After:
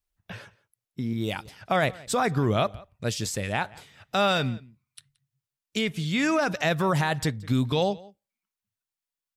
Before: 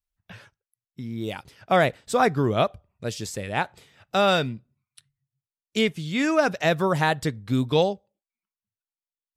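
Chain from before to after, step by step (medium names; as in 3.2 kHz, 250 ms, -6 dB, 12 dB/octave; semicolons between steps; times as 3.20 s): peaking EQ 430 Hz +3.5 dB 1.5 oct, from 1.13 s -4 dB; peak limiter -18 dBFS, peak gain reduction 9.5 dB; echo from a far wall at 30 m, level -22 dB; trim +3.5 dB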